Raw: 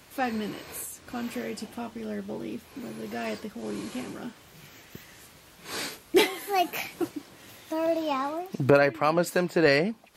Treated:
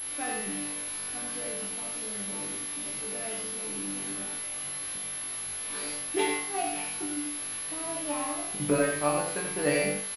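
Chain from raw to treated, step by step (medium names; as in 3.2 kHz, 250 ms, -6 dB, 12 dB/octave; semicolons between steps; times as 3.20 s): word length cut 6-bit, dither triangular; chord resonator G2 fifth, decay 0.47 s; on a send: delay 88 ms -4 dB; on the sum: class-D stage that switches slowly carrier 11 kHz; trim +7.5 dB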